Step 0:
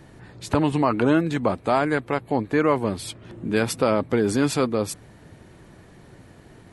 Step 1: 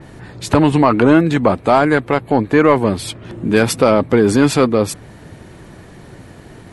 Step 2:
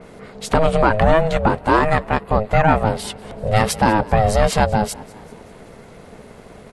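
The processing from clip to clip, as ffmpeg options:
-af "acontrast=84,adynamicequalizer=threshold=0.0158:dfrequency=3900:dqfactor=0.7:tfrequency=3900:tqfactor=0.7:attack=5:release=100:ratio=0.375:range=2:mode=cutabove:tftype=highshelf,volume=2.5dB"
-filter_complex "[0:a]asplit=5[a][b][c][d][e];[b]adelay=194,afreqshift=44,volume=-22.5dB[f];[c]adelay=388,afreqshift=88,volume=-27.5dB[g];[d]adelay=582,afreqshift=132,volume=-32.6dB[h];[e]adelay=776,afreqshift=176,volume=-37.6dB[i];[a][f][g][h][i]amix=inputs=5:normalize=0,aeval=exprs='val(0)*sin(2*PI*320*n/s)':c=same"

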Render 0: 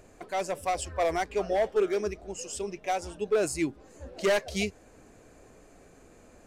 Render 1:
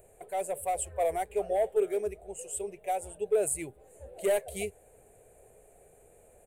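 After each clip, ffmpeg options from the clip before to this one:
-af "firequalizer=gain_entry='entry(130,0);entry(280,-13);entry(410,5);entry(750,4);entry(1100,-9);entry(2200,-2);entry(3700,-6);entry(5300,-19);entry(8400,13)':delay=0.05:min_phase=1,volume=-5.5dB"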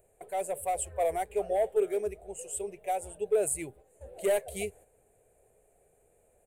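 -af "agate=range=-8dB:threshold=-52dB:ratio=16:detection=peak"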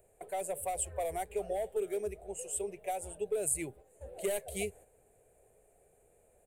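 -filter_complex "[0:a]acrossover=split=250|3000[a][b][c];[b]acompressor=threshold=-33dB:ratio=6[d];[a][d][c]amix=inputs=3:normalize=0"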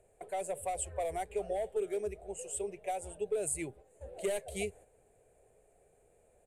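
-af "lowpass=8.6k"

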